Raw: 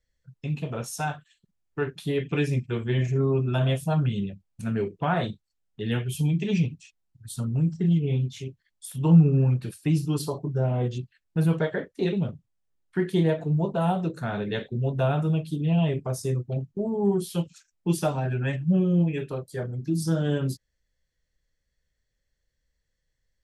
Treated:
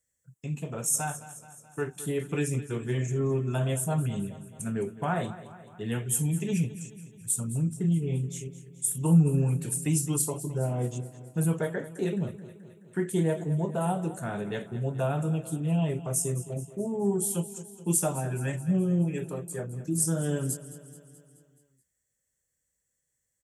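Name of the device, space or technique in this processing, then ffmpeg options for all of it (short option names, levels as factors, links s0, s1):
budget condenser microphone: -filter_complex "[0:a]asettb=1/sr,asplit=3[s0][s1][s2];[s0]atrim=end=9.264[s3];[s1]atrim=start=9.26:end=10.16,asetpts=PTS-STARTPTS,afade=t=in:d=0.004:c=qsin,afade=t=out:st=0.896:d=0.004:c=qsin,equalizer=f=5500:w=0.33:g=6[s4];[s2]atrim=start=10.156[s5];[s3][s4]acrossfade=d=0.004:c1=hsin:c2=qsin[s6];[s6][s5]acrossfade=d=0.004:c1=qsin:c2=hsin,highpass=94,highshelf=f=5900:t=q:w=3:g=11,aecho=1:1:214|428|642|856|1070|1284:0.168|0.0974|0.0565|0.0328|0.019|0.011,volume=0.668"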